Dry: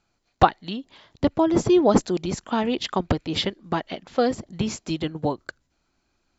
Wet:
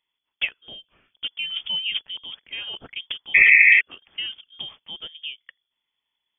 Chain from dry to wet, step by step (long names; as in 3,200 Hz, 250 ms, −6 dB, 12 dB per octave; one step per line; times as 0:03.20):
bad sample-rate conversion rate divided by 6×, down filtered, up zero stuff
sound drawn into the spectrogram noise, 0:03.34–0:03.81, 760–1,600 Hz −3 dBFS
voice inversion scrambler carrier 3,400 Hz
level −10 dB